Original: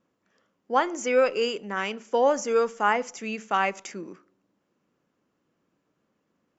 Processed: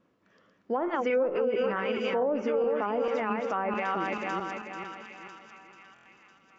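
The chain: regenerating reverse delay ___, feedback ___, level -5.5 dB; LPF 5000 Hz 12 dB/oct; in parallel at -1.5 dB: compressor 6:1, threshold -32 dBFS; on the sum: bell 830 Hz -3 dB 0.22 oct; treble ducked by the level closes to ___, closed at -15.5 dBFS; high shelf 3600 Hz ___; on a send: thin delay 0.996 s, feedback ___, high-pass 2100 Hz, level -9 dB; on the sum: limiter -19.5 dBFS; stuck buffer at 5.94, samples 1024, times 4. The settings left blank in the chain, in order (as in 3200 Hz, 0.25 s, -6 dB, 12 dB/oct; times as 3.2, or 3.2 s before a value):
0.22 s, 62%, 600 Hz, -3 dB, 34%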